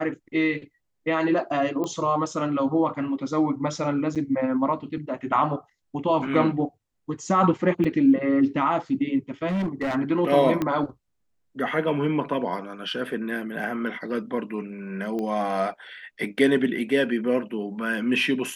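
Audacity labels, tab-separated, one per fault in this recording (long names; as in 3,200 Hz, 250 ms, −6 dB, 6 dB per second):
1.840000	1.840000	click −18 dBFS
4.150000	4.160000	drop-out 7 ms
7.840000	7.850000	drop-out 5.6 ms
9.480000	9.960000	clipping −22.5 dBFS
10.620000	10.620000	click −13 dBFS
15.190000	15.190000	click −20 dBFS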